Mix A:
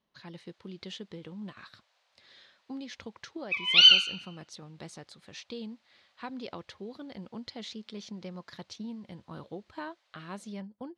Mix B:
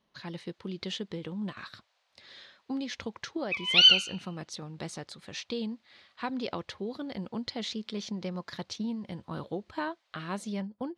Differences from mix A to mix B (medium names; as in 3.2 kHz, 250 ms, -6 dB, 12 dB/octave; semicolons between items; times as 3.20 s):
speech +6.0 dB; background: send -6.0 dB